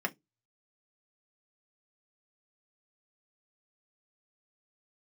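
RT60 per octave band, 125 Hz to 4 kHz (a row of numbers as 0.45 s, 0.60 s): 0.25 s, 0.20 s, 0.20 s, 0.15 s, 0.15 s, 0.15 s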